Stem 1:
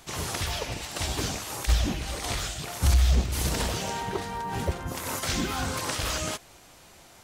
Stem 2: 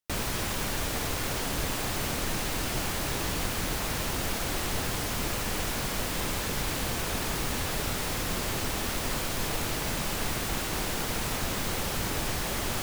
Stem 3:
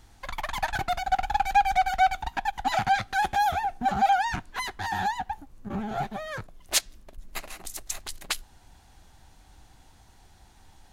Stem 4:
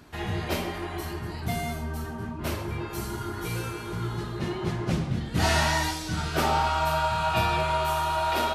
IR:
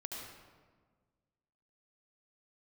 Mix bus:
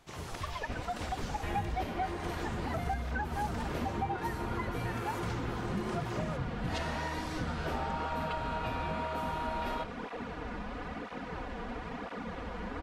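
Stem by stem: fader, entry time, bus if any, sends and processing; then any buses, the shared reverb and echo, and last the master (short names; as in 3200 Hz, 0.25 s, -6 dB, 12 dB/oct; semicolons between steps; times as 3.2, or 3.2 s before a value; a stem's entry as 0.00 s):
-8.0 dB, 0.00 s, bus B, no send, dry
-0.5 dB, 0.60 s, bus A, no send, minimum comb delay 4.1 ms; tape flanging out of phase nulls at 1 Hz, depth 8 ms
+1.5 dB, 0.00 s, bus A, no send, per-bin expansion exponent 3
-1.0 dB, 1.30 s, bus B, no send, dry
bus A: 0.0 dB, LPF 1600 Hz 12 dB/oct; compressor, threshold -33 dBFS, peak gain reduction 15 dB
bus B: 0.0 dB, high shelf 4000 Hz -11.5 dB; compressor, threshold -34 dBFS, peak gain reduction 12.5 dB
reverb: off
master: dry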